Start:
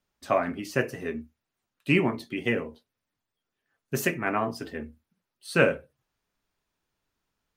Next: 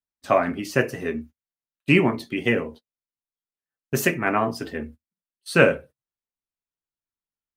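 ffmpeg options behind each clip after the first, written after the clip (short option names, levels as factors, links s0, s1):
-af "agate=range=0.0562:threshold=0.00501:ratio=16:detection=peak,volume=1.78"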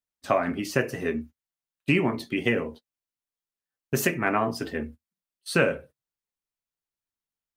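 -af "acompressor=threshold=0.1:ratio=2.5"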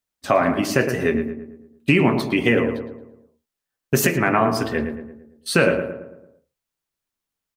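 -filter_complex "[0:a]alimiter=limit=0.251:level=0:latency=1:release=80,asplit=2[s0][s1];[s1]adelay=112,lowpass=f=1700:p=1,volume=0.447,asplit=2[s2][s3];[s3]adelay=112,lowpass=f=1700:p=1,volume=0.5,asplit=2[s4][s5];[s5]adelay=112,lowpass=f=1700:p=1,volume=0.5,asplit=2[s6][s7];[s7]adelay=112,lowpass=f=1700:p=1,volume=0.5,asplit=2[s8][s9];[s9]adelay=112,lowpass=f=1700:p=1,volume=0.5,asplit=2[s10][s11];[s11]adelay=112,lowpass=f=1700:p=1,volume=0.5[s12];[s0][s2][s4][s6][s8][s10][s12]amix=inputs=7:normalize=0,volume=2.37"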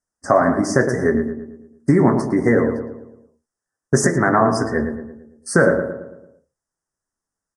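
-af "asuperstop=centerf=3100:order=12:qfactor=1,aresample=22050,aresample=44100,volume=1.41" -ar 44100 -c:a libvorbis -b:a 96k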